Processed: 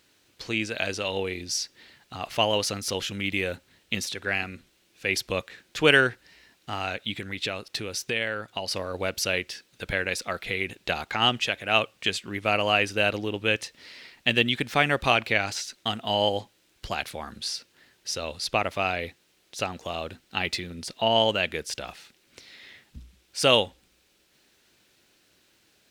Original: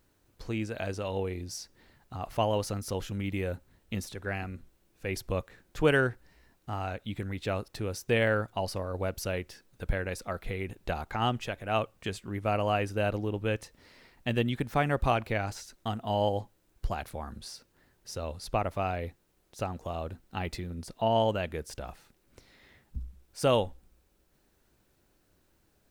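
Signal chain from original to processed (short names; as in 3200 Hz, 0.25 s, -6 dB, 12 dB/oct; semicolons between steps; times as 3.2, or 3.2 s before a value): 7.11–8.71 compressor 4:1, threshold -33 dBFS, peak gain reduction 10 dB; weighting filter D; gain +3.5 dB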